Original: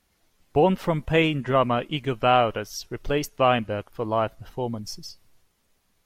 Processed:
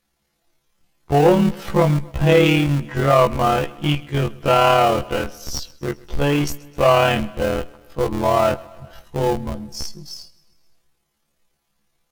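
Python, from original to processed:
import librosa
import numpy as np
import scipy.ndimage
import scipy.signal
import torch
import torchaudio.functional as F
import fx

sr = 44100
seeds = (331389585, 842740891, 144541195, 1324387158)

p1 = fx.peak_eq(x, sr, hz=780.0, db=2.0, octaves=0.28)
p2 = p1 + 0.54 * np.pad(p1, (int(5.9 * sr / 1000.0), 0))[:len(p1)]
p3 = fx.leveller(p2, sr, passes=1)
p4 = fx.schmitt(p3, sr, flips_db=-20.5)
p5 = p3 + (p4 * librosa.db_to_amplitude(-5.0))
p6 = fx.stretch_grains(p5, sr, factor=2.0, grain_ms=56.0)
y = p6 + fx.echo_feedback(p6, sr, ms=131, feedback_pct=60, wet_db=-23.0, dry=0)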